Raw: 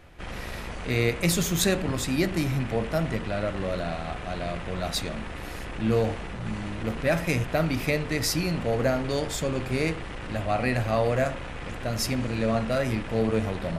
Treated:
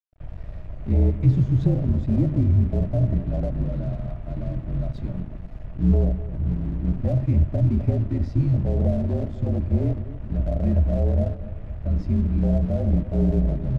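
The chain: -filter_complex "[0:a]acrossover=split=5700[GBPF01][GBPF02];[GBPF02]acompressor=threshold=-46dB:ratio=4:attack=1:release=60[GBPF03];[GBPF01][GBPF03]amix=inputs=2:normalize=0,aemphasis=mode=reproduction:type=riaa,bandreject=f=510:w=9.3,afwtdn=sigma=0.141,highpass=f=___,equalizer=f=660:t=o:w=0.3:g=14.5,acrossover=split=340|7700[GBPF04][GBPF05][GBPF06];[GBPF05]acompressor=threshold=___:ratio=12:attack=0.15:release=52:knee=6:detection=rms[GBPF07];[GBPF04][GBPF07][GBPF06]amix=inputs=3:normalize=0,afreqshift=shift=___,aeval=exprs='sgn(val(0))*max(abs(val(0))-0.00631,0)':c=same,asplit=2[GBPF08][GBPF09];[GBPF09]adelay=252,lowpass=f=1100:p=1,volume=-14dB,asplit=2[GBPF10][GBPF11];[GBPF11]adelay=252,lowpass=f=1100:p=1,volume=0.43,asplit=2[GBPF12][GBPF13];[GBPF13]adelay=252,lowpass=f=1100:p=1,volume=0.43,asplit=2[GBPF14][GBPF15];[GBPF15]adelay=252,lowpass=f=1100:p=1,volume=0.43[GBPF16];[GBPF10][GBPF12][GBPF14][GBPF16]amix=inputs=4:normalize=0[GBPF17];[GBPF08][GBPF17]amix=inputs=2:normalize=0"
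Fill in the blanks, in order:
92, -29dB, -40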